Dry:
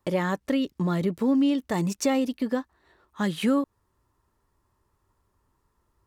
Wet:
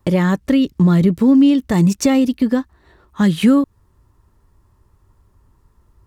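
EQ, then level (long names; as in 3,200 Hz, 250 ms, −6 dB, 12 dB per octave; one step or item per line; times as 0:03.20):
dynamic equaliser 670 Hz, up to −4 dB, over −37 dBFS, Q 0.78
low-shelf EQ 210 Hz +12 dB
+7.5 dB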